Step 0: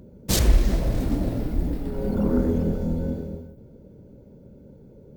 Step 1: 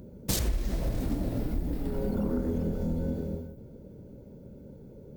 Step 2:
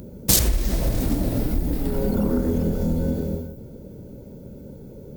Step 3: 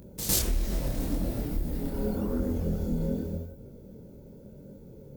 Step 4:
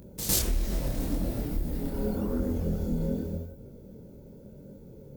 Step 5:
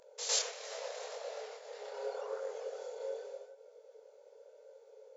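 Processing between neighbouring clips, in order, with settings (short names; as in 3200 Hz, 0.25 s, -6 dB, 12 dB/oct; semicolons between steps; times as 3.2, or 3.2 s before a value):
high shelf 7700 Hz +5 dB; compressor 5:1, threshold -26 dBFS, peak gain reduction 13.5 dB
high shelf 4800 Hz +8.5 dB; gain +7.5 dB
reverse echo 0.105 s -9.5 dB; chorus voices 2, 0.82 Hz, delay 25 ms, depth 4.7 ms; gain -5 dB
nothing audible
brick-wall FIR band-pass 420–7500 Hz; gain -1 dB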